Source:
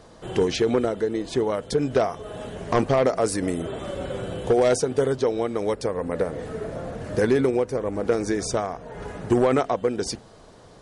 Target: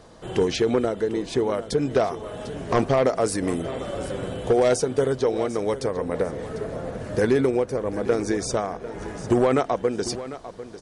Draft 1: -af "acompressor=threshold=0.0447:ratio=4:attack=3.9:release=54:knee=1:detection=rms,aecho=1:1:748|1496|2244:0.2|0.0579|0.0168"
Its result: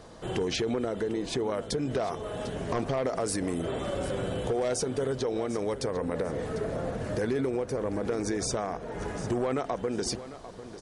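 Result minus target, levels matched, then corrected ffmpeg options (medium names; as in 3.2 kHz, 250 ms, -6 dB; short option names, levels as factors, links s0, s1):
compression: peak gain reduction +10.5 dB
-af "aecho=1:1:748|1496|2244:0.2|0.0579|0.0168"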